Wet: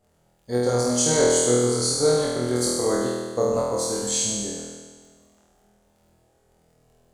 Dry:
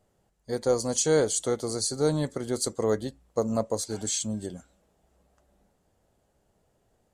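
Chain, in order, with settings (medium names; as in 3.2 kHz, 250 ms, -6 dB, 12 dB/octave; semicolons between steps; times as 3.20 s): crackle 15 per s -51 dBFS; on a send: flutter echo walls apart 4.2 m, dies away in 1.5 s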